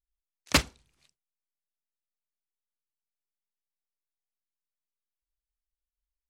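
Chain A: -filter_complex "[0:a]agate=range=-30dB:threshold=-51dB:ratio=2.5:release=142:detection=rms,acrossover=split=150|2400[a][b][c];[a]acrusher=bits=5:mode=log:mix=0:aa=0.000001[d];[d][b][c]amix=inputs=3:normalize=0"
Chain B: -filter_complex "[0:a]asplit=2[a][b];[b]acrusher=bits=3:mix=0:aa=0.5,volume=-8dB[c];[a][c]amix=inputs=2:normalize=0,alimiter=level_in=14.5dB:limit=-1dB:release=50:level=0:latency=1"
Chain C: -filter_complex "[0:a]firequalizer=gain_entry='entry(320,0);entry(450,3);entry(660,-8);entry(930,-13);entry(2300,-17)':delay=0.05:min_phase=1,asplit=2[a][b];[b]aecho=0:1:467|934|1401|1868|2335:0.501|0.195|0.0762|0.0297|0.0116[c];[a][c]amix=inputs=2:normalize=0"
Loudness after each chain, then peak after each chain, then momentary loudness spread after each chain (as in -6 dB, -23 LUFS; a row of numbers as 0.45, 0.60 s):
-26.5, -17.5, -37.5 LUFS; -6.5, -1.0, -12.5 dBFS; 11, 8, 22 LU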